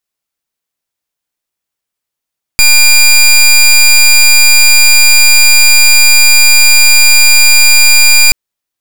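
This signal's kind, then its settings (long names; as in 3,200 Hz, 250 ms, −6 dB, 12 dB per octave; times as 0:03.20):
pulse wave 2,400 Hz, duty 18% −4 dBFS 5.73 s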